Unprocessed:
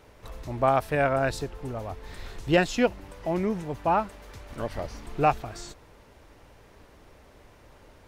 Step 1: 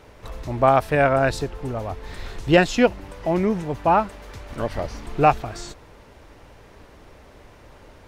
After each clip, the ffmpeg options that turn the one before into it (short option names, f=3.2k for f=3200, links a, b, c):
-af "highshelf=f=8.8k:g=-5.5,volume=6dB"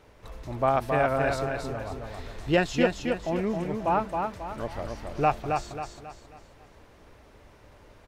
-af "aecho=1:1:270|540|810|1080|1350:0.596|0.238|0.0953|0.0381|0.0152,volume=-7.5dB"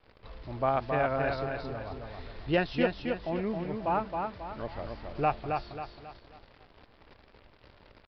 -af "acrusher=bits=9:dc=4:mix=0:aa=0.000001,aresample=11025,aresample=44100,volume=-4dB"